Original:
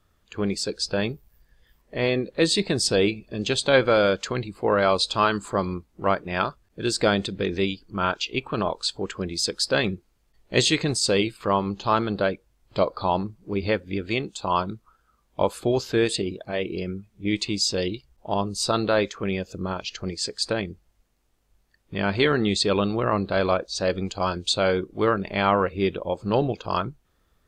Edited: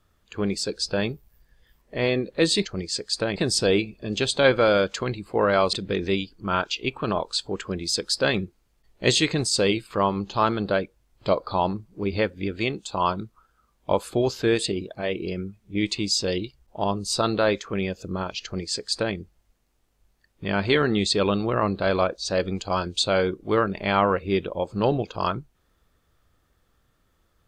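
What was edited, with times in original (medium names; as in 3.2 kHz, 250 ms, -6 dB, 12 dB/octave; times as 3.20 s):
5.02–7.23 s: delete
19.94–20.65 s: copy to 2.65 s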